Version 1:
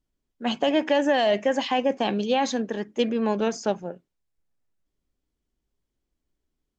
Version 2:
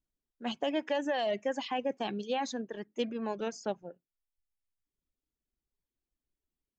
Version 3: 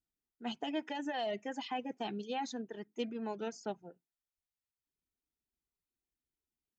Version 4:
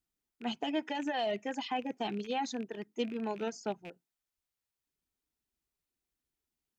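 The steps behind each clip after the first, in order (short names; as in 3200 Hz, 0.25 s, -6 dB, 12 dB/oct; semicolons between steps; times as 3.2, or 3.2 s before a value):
reverb removal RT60 0.94 s; gain -9 dB
notch comb 560 Hz; gain -3.5 dB
rattling part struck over -55 dBFS, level -42 dBFS; gain +3.5 dB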